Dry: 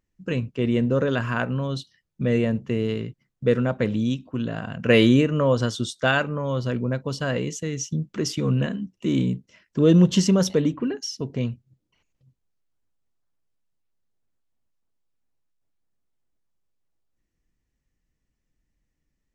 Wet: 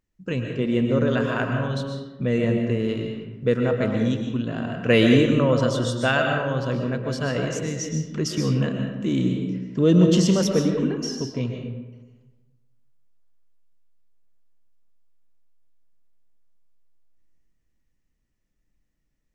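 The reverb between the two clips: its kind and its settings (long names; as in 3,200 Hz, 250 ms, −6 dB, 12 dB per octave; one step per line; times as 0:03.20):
comb and all-pass reverb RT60 1.2 s, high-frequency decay 0.55×, pre-delay 85 ms, DRR 2.5 dB
level −1 dB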